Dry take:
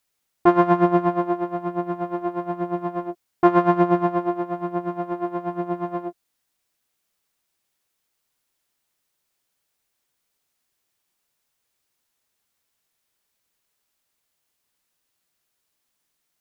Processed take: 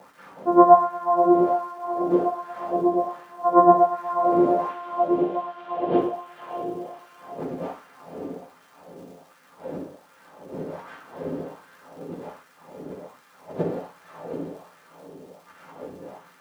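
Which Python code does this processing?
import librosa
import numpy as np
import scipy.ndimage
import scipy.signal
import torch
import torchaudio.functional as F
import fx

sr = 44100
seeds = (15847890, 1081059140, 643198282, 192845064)

y = fx.spec_expand(x, sr, power=2.1)
y = fx.dmg_wind(y, sr, seeds[0], corner_hz=170.0, level_db=-30.0)
y = fx.dynamic_eq(y, sr, hz=630.0, q=2.1, threshold_db=-36.0, ratio=4.0, max_db=6)
y = fx.auto_swell(y, sr, attack_ms=112.0)
y = fx.dmg_crackle(y, sr, seeds[1], per_s=220.0, level_db=-48.0)
y = fx.lowpass_res(y, sr, hz=3100.0, q=3.5, at=(4.69, 5.98))
y = fx.echo_diffused(y, sr, ms=545, feedback_pct=45, wet_db=-6.0)
y = fx.rev_fdn(y, sr, rt60_s=0.78, lf_ratio=1.05, hf_ratio=0.8, size_ms=34.0, drr_db=-3.0)
y = fx.filter_lfo_highpass(y, sr, shape='sine', hz=1.3, low_hz=360.0, high_hz=1500.0, q=2.0)
y = F.gain(torch.from_numpy(y), -1.0).numpy()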